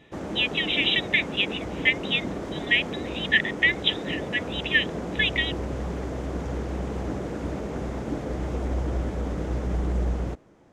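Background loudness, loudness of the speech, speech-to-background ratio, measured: -31.5 LUFS, -24.5 LUFS, 7.0 dB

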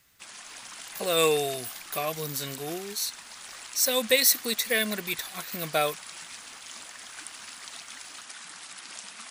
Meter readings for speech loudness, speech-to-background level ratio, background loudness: -26.5 LUFS, 14.5 dB, -41.0 LUFS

